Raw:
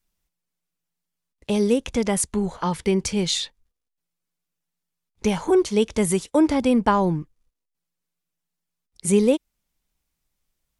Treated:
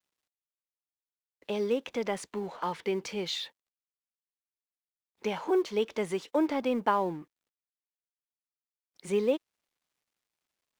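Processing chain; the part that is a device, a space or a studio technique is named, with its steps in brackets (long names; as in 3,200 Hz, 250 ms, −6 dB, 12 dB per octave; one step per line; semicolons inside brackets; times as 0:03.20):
phone line with mismatched companding (band-pass filter 340–3,600 Hz; mu-law and A-law mismatch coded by mu)
level −6.5 dB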